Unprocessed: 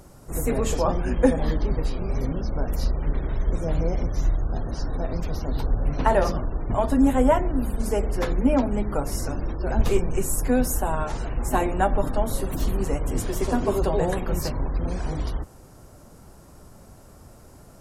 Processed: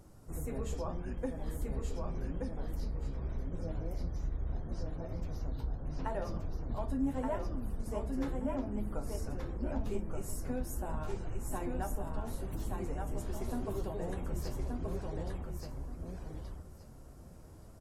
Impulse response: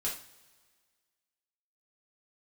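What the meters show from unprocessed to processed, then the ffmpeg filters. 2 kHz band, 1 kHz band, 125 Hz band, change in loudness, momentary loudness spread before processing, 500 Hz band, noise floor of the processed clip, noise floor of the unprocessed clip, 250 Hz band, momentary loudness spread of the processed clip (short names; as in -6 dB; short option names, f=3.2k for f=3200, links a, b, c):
-16.5 dB, -16.5 dB, -11.0 dB, -14.0 dB, 8 LU, -15.5 dB, -52 dBFS, -49 dBFS, -13.5 dB, 8 LU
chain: -filter_complex "[0:a]lowshelf=f=320:g=6,acompressor=threshold=-25dB:ratio=2,flanger=delay=9.2:depth=5.8:regen=57:speed=0.79:shape=sinusoidal,aecho=1:1:1176|2352|3528:0.668|0.127|0.0241,asplit=2[a][b];[1:a]atrim=start_sample=2205[c];[b][c]afir=irnorm=-1:irlink=0,volume=-18.5dB[d];[a][d]amix=inputs=2:normalize=0,volume=-9dB"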